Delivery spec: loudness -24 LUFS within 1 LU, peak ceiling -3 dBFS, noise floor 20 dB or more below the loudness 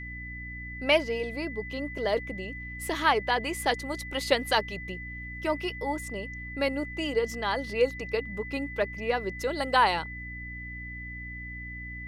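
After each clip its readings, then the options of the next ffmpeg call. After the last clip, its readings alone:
hum 60 Hz; harmonics up to 300 Hz; hum level -39 dBFS; steady tone 2000 Hz; tone level -39 dBFS; loudness -30.0 LUFS; peak -9.5 dBFS; loudness target -24.0 LUFS
-> -af "bandreject=f=60:t=h:w=4,bandreject=f=120:t=h:w=4,bandreject=f=180:t=h:w=4,bandreject=f=240:t=h:w=4,bandreject=f=300:t=h:w=4"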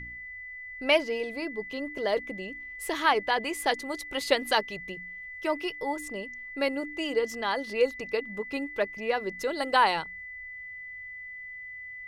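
hum none; steady tone 2000 Hz; tone level -39 dBFS
-> -af "bandreject=f=2k:w=30"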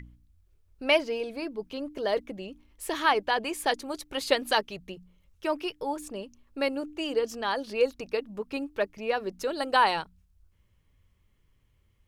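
steady tone none; loudness -29.0 LUFS; peak -9.5 dBFS; loudness target -24.0 LUFS
-> -af "volume=5dB"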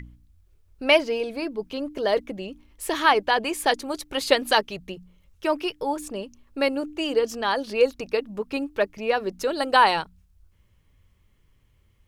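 loudness -24.0 LUFS; peak -4.5 dBFS; noise floor -62 dBFS

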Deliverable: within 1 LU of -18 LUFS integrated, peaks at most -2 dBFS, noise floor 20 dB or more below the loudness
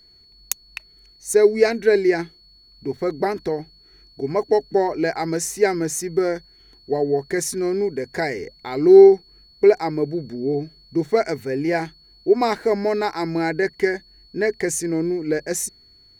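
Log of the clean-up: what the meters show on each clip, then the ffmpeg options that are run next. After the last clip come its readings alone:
steady tone 4400 Hz; tone level -50 dBFS; loudness -20.5 LUFS; peak -1.5 dBFS; loudness target -18.0 LUFS
-> -af "bandreject=f=4.4k:w=30"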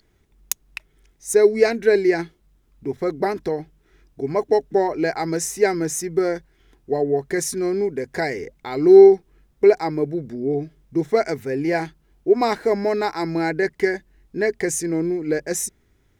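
steady tone none; loudness -20.5 LUFS; peak -1.5 dBFS; loudness target -18.0 LUFS
-> -af "volume=2.5dB,alimiter=limit=-2dB:level=0:latency=1"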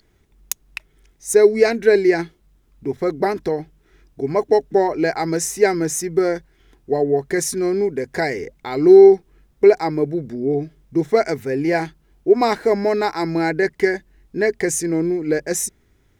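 loudness -18.5 LUFS; peak -2.0 dBFS; noise floor -59 dBFS

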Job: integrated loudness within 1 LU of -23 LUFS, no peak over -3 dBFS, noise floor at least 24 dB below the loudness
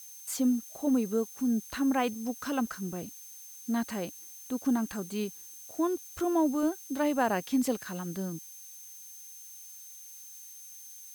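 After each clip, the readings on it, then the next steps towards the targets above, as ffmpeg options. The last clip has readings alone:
steady tone 6300 Hz; tone level -49 dBFS; noise floor -48 dBFS; noise floor target -55 dBFS; loudness -31.0 LUFS; peak -15.5 dBFS; loudness target -23.0 LUFS
-> -af "bandreject=f=6.3k:w=30"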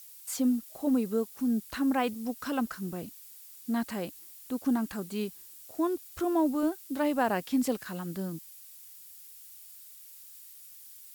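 steady tone none; noise floor -50 dBFS; noise floor target -55 dBFS
-> -af "afftdn=nr=6:nf=-50"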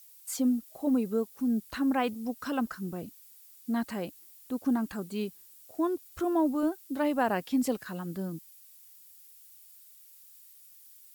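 noise floor -55 dBFS; noise floor target -56 dBFS
-> -af "afftdn=nr=6:nf=-55"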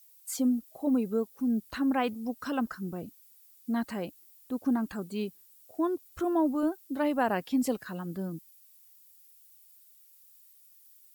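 noise floor -59 dBFS; loudness -31.5 LUFS; peak -15.5 dBFS; loudness target -23.0 LUFS
-> -af "volume=8.5dB"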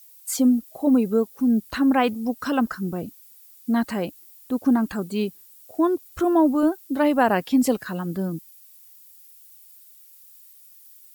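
loudness -23.0 LUFS; peak -7.0 dBFS; noise floor -50 dBFS

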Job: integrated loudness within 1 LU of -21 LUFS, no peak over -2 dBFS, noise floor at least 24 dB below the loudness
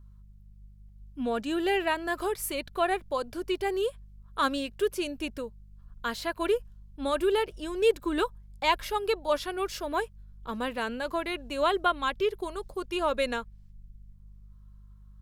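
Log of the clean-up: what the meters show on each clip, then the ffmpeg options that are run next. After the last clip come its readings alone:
hum 50 Hz; harmonics up to 200 Hz; hum level -48 dBFS; loudness -30.0 LUFS; peak -10.0 dBFS; loudness target -21.0 LUFS
-> -af "bandreject=f=50:t=h:w=4,bandreject=f=100:t=h:w=4,bandreject=f=150:t=h:w=4,bandreject=f=200:t=h:w=4"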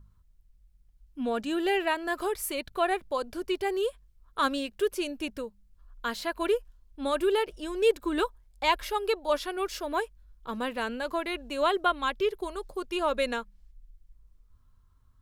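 hum none; loudness -30.0 LUFS; peak -10.0 dBFS; loudness target -21.0 LUFS
-> -af "volume=9dB,alimiter=limit=-2dB:level=0:latency=1"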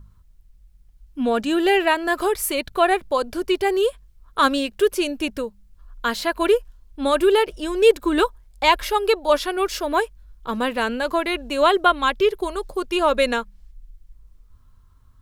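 loudness -21.0 LUFS; peak -2.0 dBFS; noise floor -53 dBFS

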